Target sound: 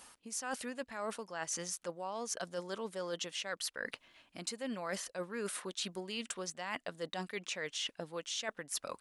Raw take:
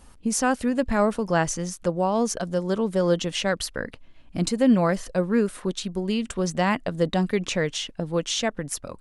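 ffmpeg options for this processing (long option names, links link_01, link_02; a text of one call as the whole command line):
ffmpeg -i in.wav -af "highpass=frequency=1300:poles=1,areverse,acompressor=threshold=-40dB:ratio=12,areverse,volume=4dB" out.wav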